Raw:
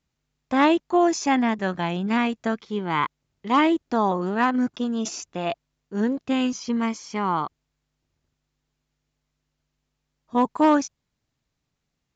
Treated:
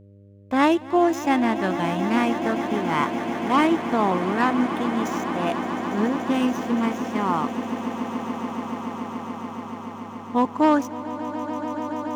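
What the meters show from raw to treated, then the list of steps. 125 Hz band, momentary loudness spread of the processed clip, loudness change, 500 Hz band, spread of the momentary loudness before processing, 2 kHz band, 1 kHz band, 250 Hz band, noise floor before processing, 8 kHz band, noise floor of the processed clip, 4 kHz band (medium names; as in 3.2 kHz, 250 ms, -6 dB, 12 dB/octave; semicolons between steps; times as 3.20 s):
+2.0 dB, 11 LU, 0.0 dB, +1.5 dB, 10 LU, +1.0 dB, +1.5 dB, +1.5 dB, -80 dBFS, no reading, -38 dBFS, -0.5 dB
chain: median filter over 9 samples; echo with a slow build-up 143 ms, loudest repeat 8, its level -14.5 dB; mains buzz 100 Hz, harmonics 6, -49 dBFS -6 dB/octave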